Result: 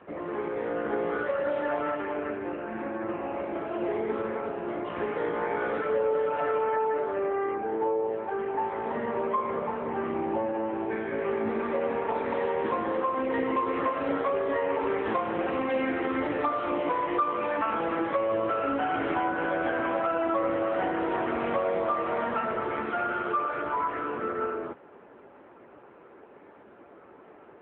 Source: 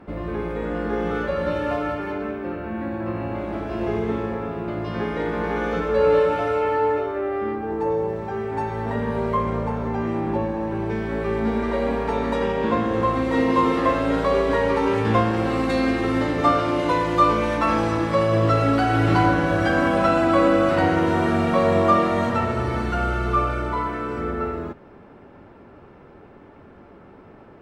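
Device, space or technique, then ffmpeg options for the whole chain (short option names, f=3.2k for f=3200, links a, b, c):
voicemail: -af "highpass=340,lowpass=3.2k,acompressor=threshold=-22dB:ratio=10" -ar 8000 -c:a libopencore_amrnb -b:a 6700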